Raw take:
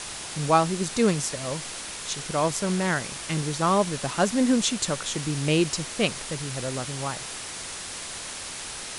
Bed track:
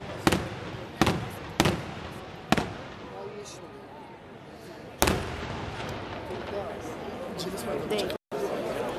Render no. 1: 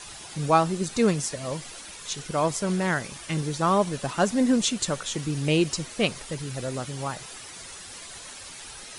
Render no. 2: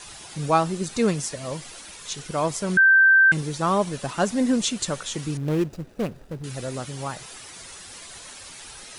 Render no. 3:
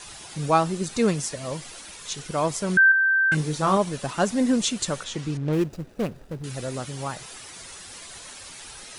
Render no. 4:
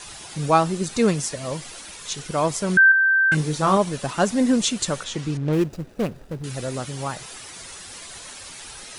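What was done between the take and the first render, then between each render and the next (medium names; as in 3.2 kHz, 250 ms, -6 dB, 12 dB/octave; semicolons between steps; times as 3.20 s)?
noise reduction 10 dB, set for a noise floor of -37 dBFS
2.77–3.32 s: bleep 1.56 kHz -11.5 dBFS; 5.37–6.44 s: median filter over 41 samples
2.89–3.77 s: doubling 26 ms -6 dB; 5.04–5.53 s: distance through air 68 m
trim +2.5 dB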